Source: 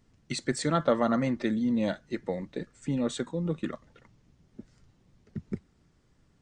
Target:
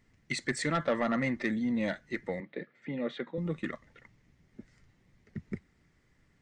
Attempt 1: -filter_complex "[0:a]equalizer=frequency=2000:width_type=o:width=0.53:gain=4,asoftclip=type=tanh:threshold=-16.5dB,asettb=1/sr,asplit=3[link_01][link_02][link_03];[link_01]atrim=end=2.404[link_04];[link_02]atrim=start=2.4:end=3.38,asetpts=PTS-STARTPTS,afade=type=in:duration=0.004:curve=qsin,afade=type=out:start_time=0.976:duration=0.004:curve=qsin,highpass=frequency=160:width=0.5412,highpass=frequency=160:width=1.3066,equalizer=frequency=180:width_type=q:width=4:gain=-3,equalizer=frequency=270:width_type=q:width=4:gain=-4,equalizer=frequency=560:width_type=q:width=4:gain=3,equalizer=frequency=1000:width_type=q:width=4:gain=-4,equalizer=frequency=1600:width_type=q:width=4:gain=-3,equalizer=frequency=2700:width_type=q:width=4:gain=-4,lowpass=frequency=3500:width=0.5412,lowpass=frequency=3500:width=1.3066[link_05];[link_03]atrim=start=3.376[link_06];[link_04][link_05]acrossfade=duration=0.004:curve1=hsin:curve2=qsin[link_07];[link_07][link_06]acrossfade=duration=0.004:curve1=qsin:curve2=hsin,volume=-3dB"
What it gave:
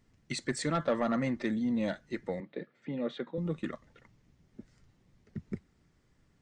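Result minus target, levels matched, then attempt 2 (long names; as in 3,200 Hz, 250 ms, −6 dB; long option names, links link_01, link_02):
2,000 Hz band −5.0 dB
-filter_complex "[0:a]equalizer=frequency=2000:width_type=o:width=0.53:gain=12,asoftclip=type=tanh:threshold=-16.5dB,asettb=1/sr,asplit=3[link_01][link_02][link_03];[link_01]atrim=end=2.404[link_04];[link_02]atrim=start=2.4:end=3.38,asetpts=PTS-STARTPTS,afade=type=in:duration=0.004:curve=qsin,afade=type=out:start_time=0.976:duration=0.004:curve=qsin,highpass=frequency=160:width=0.5412,highpass=frequency=160:width=1.3066,equalizer=frequency=180:width_type=q:width=4:gain=-3,equalizer=frequency=270:width_type=q:width=4:gain=-4,equalizer=frequency=560:width_type=q:width=4:gain=3,equalizer=frequency=1000:width_type=q:width=4:gain=-4,equalizer=frequency=1600:width_type=q:width=4:gain=-3,equalizer=frequency=2700:width_type=q:width=4:gain=-4,lowpass=frequency=3500:width=0.5412,lowpass=frequency=3500:width=1.3066[link_05];[link_03]atrim=start=3.376[link_06];[link_04][link_05]acrossfade=duration=0.004:curve1=hsin:curve2=qsin[link_07];[link_07][link_06]acrossfade=duration=0.004:curve1=qsin:curve2=hsin,volume=-3dB"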